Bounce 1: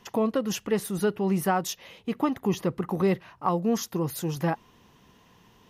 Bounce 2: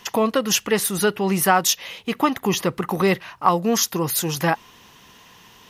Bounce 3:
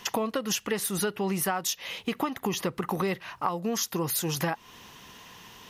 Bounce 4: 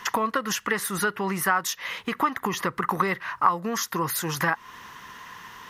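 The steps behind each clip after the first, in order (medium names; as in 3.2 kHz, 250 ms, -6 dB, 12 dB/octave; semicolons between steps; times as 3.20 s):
tilt shelf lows -6 dB, about 860 Hz; trim +8.5 dB
compression 6:1, threshold -26 dBFS, peak gain reduction 14.5 dB
high-order bell 1.4 kHz +10.5 dB 1.3 oct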